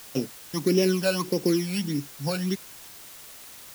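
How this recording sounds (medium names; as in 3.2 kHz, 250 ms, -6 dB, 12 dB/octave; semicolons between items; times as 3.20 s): a buzz of ramps at a fixed pitch in blocks of 8 samples; phasing stages 12, 1.6 Hz, lowest notch 330–1400 Hz; a quantiser's noise floor 8-bit, dither triangular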